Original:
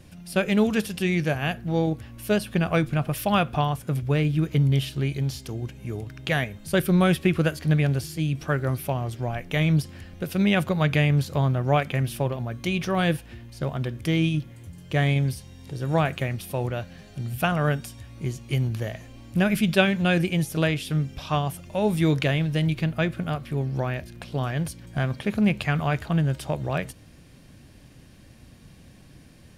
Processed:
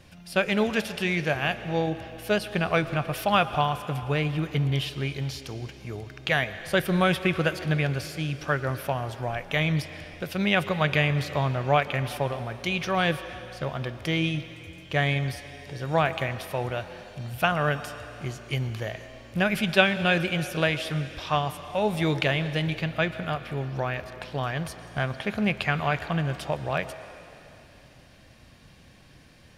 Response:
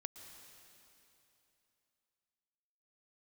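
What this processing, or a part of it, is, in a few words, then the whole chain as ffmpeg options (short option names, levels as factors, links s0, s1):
filtered reverb send: -filter_complex "[0:a]asplit=2[s0][s1];[s1]highpass=450,lowpass=6400[s2];[1:a]atrim=start_sample=2205[s3];[s2][s3]afir=irnorm=-1:irlink=0,volume=1.78[s4];[s0][s4]amix=inputs=2:normalize=0,volume=0.631"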